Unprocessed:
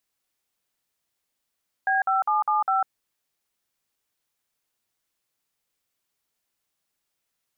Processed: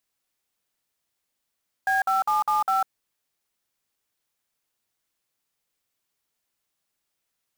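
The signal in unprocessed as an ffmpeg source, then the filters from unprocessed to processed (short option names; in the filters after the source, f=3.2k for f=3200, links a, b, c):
-f lavfi -i "aevalsrc='0.0794*clip(min(mod(t,0.202),0.15-mod(t,0.202))/0.002,0,1)*(eq(floor(t/0.202),0)*(sin(2*PI*770*mod(t,0.202))+sin(2*PI*1633*mod(t,0.202)))+eq(floor(t/0.202),1)*(sin(2*PI*770*mod(t,0.202))+sin(2*PI*1336*mod(t,0.202)))+eq(floor(t/0.202),2)*(sin(2*PI*852*mod(t,0.202))+sin(2*PI*1209*mod(t,0.202)))+eq(floor(t/0.202),3)*(sin(2*PI*852*mod(t,0.202))+sin(2*PI*1209*mod(t,0.202)))+eq(floor(t/0.202),4)*(sin(2*PI*770*mod(t,0.202))+sin(2*PI*1336*mod(t,0.202))))':d=1.01:s=44100"
-af "acrusher=bits=4:mode=log:mix=0:aa=0.000001"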